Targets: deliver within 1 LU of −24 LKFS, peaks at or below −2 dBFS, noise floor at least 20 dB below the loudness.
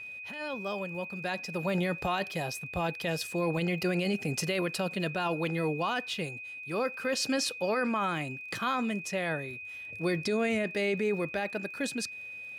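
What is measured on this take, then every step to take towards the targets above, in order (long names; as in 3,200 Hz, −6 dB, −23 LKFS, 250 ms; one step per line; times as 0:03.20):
crackle rate 27 per second; interfering tone 2,500 Hz; level of the tone −40 dBFS; integrated loudness −32.0 LKFS; sample peak −19.5 dBFS; target loudness −24.0 LKFS
→ click removal
notch filter 2,500 Hz, Q 30
level +8 dB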